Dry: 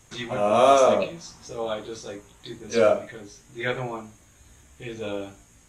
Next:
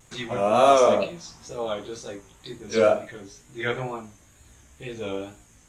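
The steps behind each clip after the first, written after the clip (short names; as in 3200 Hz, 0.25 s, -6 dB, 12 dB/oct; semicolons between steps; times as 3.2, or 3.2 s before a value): vibrato 2.1 Hz 68 cents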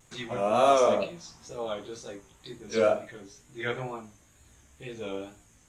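notches 50/100 Hz; gain -4.5 dB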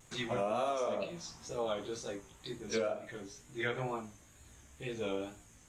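compressor 16:1, threshold -30 dBFS, peak gain reduction 15 dB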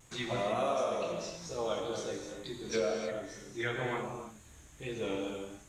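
non-linear reverb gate 0.34 s flat, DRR 1.5 dB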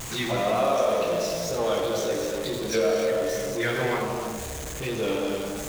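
zero-crossing step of -36 dBFS; narrowing echo 81 ms, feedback 84%, band-pass 540 Hz, level -7.5 dB; gain +5.5 dB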